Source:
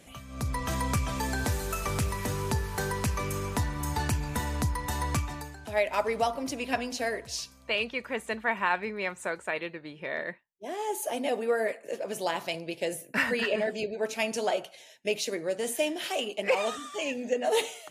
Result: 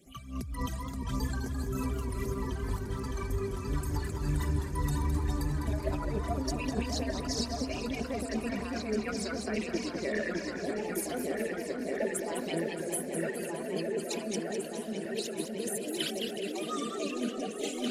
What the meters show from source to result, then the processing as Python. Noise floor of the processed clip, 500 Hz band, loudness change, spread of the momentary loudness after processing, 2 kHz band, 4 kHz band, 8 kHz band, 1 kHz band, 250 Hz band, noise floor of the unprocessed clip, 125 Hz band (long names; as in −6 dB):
−39 dBFS, −4.5 dB, −3.5 dB, 3 LU, −8.5 dB, −4.0 dB, −2.5 dB, −8.0 dB, +2.5 dB, −53 dBFS, −0.5 dB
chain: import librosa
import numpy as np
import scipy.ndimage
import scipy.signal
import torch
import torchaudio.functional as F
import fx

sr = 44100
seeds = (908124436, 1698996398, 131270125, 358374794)

p1 = fx.bin_expand(x, sr, power=1.5)
p2 = fx.peak_eq(p1, sr, hz=390.0, db=12.5, octaves=0.24)
p3 = fx.notch(p2, sr, hz=910.0, q=8.3)
p4 = fx.over_compress(p3, sr, threshold_db=-41.0, ratio=-1.0)
p5 = fx.phaser_stages(p4, sr, stages=12, low_hz=320.0, high_hz=3400.0, hz=3.6, feedback_pct=25)
p6 = p5 + fx.echo_opening(p5, sr, ms=612, hz=400, octaves=2, feedback_pct=70, wet_db=0, dry=0)
p7 = fx.echo_warbled(p6, sr, ms=208, feedback_pct=62, rate_hz=2.8, cents=130, wet_db=-8)
y = p7 * librosa.db_to_amplitude(3.5)